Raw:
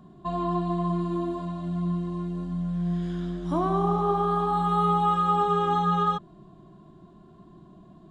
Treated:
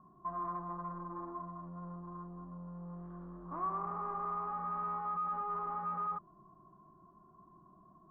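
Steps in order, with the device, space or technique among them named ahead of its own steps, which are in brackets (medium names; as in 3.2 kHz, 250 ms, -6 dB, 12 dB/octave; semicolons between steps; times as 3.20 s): overdriven synthesiser ladder filter (saturation -29.5 dBFS, distortion -7 dB; four-pole ladder low-pass 1.2 kHz, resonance 80%); trim -2 dB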